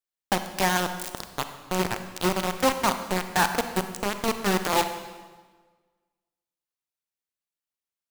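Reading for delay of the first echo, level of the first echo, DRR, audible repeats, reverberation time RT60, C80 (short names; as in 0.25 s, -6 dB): none, none, 8.5 dB, none, 1.4 s, 10.5 dB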